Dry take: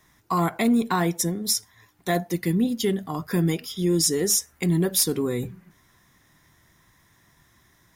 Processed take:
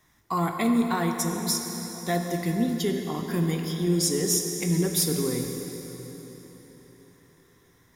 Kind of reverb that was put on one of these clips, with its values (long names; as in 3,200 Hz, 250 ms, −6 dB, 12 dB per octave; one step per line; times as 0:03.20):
dense smooth reverb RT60 4.3 s, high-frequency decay 0.8×, DRR 3 dB
level −4 dB